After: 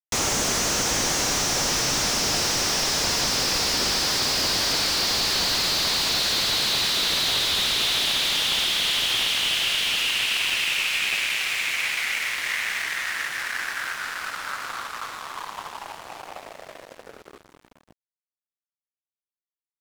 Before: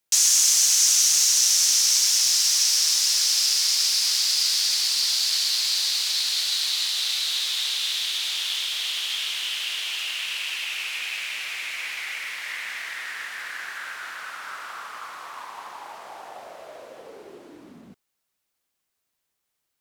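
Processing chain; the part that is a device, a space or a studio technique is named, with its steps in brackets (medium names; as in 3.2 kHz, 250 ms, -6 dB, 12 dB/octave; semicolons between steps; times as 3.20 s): early transistor amplifier (crossover distortion -41.5 dBFS; slew-rate limiter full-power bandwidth 130 Hz); trim +8.5 dB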